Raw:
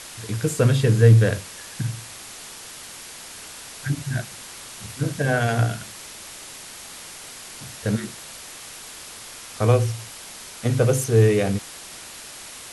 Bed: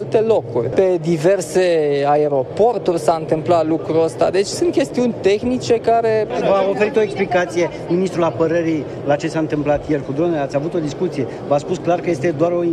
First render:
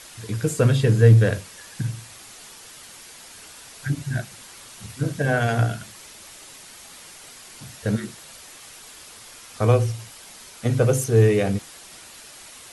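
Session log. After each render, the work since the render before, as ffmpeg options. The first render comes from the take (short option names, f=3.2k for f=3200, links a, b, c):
-af "afftdn=nr=6:nf=-40"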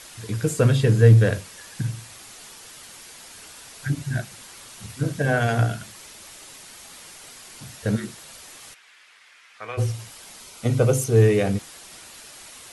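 -filter_complex "[0:a]asplit=3[a][b][c];[a]afade=t=out:st=8.73:d=0.02[d];[b]bandpass=f=2k:t=q:w=1.9,afade=t=in:st=8.73:d=0.02,afade=t=out:st=9.77:d=0.02[e];[c]afade=t=in:st=9.77:d=0.02[f];[d][e][f]amix=inputs=3:normalize=0,asettb=1/sr,asplit=3[g][h][i];[g]atrim=end=10.404[j];[h]atrim=start=10.4:end=11.16,asetpts=PTS-STARTPTS,afade=t=in:d=0.004:c=qsin,afade=t=out:st=0.756:d=0.004:c=qsin,bandreject=f=1.7k:w=5.5[k];[i]atrim=start=11.156[l];[j][k]acrossfade=d=0.004:c1=hsin:c2=qsin[m];[m][l]acrossfade=d=0.004:c1=qsin:c2=hsin"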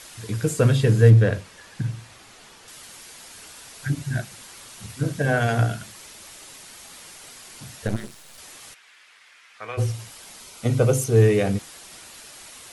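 -filter_complex "[0:a]asettb=1/sr,asplit=3[a][b][c];[a]atrim=end=1.104[d];[b]atrim=start=1.1:end=2.68,asetpts=PTS-STARTPTS,afade=t=in:d=0.004:c=qsin,afade=t=out:st=1.576:d=0.004:c=qsin,lowpass=f=3.1k:p=1[e];[c]atrim=start=2.676[f];[d][e]acrossfade=d=0.004:c1=hsin:c2=qsin[g];[g][f]acrossfade=d=0.004:c1=qsin:c2=hsin,asettb=1/sr,asplit=3[h][i][j];[h]atrim=end=7.874[k];[i]atrim=start=7.87:end=8.38,asetpts=PTS-STARTPTS,afade=t=in:d=0.004:c=qsin,afade=t=out:st=0.506:d=0.004:c=qsin,aeval=exprs='max(val(0),0)':c=same[l];[j]atrim=start=8.376[m];[k][l]acrossfade=d=0.004:c1=hsin:c2=qsin[n];[n][m]acrossfade=d=0.004:c1=qsin:c2=hsin"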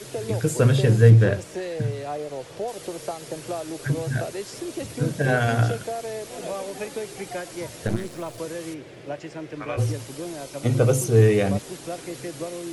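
-filter_complex "[1:a]volume=-16.5dB[a];[0:a][a]amix=inputs=2:normalize=0"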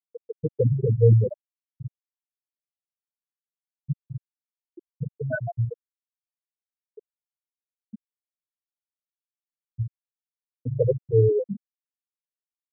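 -af "highpass=f=130:p=1,afftfilt=real='re*gte(hypot(re,im),0.562)':imag='im*gte(hypot(re,im),0.562)':win_size=1024:overlap=0.75"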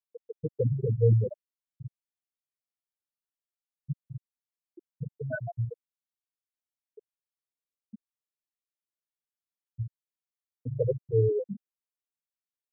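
-af "volume=-5.5dB"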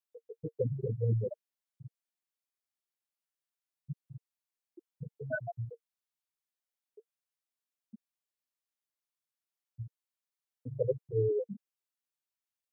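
-af "lowshelf=f=200:g=-10.5,bandreject=f=460:w=12"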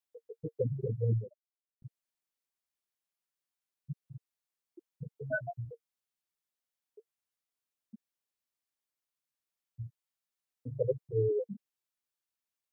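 -filter_complex "[0:a]asettb=1/sr,asplit=3[a][b][c];[a]atrim=end=5.304[d];[b]atrim=start=5.3:end=5.72,asetpts=PTS-STARTPTS,afade=t=in:d=0.004:c=qsin,afade=t=out:st=0.416:d=0.004:c=qsin,asplit=2[e][f];[f]adelay=14,volume=-7.5dB[g];[e][g]amix=inputs=2:normalize=0,atrim=end_sample=18522[h];[c]atrim=start=5.716[i];[d][h]acrossfade=d=0.004:c1=hsin:c2=qsin[j];[j][i]acrossfade=d=0.004:c1=qsin:c2=hsin,asettb=1/sr,asplit=3[k][l][m];[k]atrim=end=9.814[n];[l]atrim=start=9.81:end=10.72,asetpts=PTS-STARTPTS,afade=t=in:d=0.004:c=qsin,afade=t=out:st=0.906:d=0.004:c=qsin,asplit=2[o][p];[p]adelay=25,volume=-11.5dB[q];[o][q]amix=inputs=2:normalize=0,atrim=end_sample=40131[r];[m]atrim=start=10.716[s];[n][r]acrossfade=d=0.004:c1=hsin:c2=qsin[t];[t][s]acrossfade=d=0.004:c1=qsin:c2=hsin,asplit=2[u][v];[u]atrim=end=1.82,asetpts=PTS-STARTPTS,afade=t=out:st=1.18:d=0.64:c=exp[w];[v]atrim=start=1.82,asetpts=PTS-STARTPTS,afade=t=in:d=0.004:c=hsin[x];[w][x]concat=n=2:v=0:a=1"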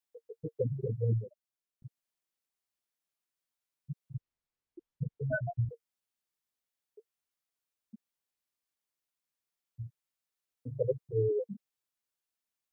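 -filter_complex "[0:a]asettb=1/sr,asplit=3[a][b][c];[a]atrim=end=4.144[d];[b]atrim=start=4.14:end=5.69,asetpts=PTS-STARTPTS,afade=t=in:d=0.004:c=qsin,afade=t=out:st=1.546:d=0.004:c=qsin,aemphasis=mode=reproduction:type=bsi[e];[c]atrim=start=5.686[f];[d][e]acrossfade=d=0.004:c1=hsin:c2=qsin[g];[g][f]acrossfade=d=0.004:c1=qsin:c2=hsin"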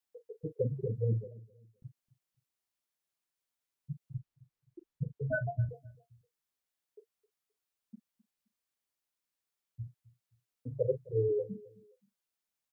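-filter_complex "[0:a]asplit=2[a][b];[b]adelay=40,volume=-14dB[c];[a][c]amix=inputs=2:normalize=0,asplit=2[d][e];[e]adelay=262,lowpass=f=1k:p=1,volume=-20.5dB,asplit=2[f][g];[g]adelay=262,lowpass=f=1k:p=1,volume=0.32[h];[d][f][h]amix=inputs=3:normalize=0"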